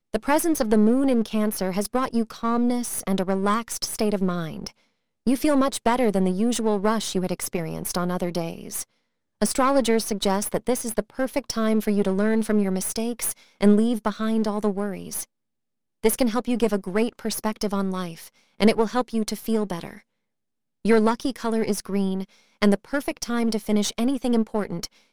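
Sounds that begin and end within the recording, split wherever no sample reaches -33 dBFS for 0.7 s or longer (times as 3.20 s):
16.04–19.95 s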